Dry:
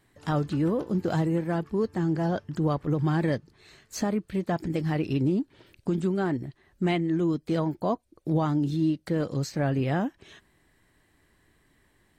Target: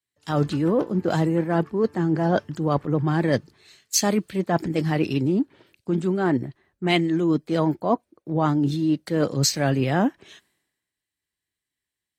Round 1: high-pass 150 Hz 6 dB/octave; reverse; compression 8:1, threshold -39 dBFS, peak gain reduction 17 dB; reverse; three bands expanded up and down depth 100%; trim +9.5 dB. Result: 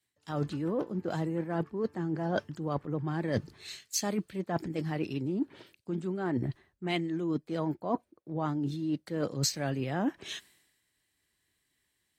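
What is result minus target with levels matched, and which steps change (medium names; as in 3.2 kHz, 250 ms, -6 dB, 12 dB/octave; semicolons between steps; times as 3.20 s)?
compression: peak gain reduction +10.5 dB
change: compression 8:1, threshold -27 dBFS, peak gain reduction 6.5 dB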